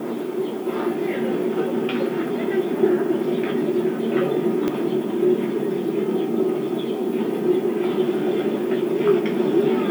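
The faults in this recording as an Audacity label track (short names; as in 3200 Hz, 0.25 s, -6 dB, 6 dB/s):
4.680000	4.680000	pop -11 dBFS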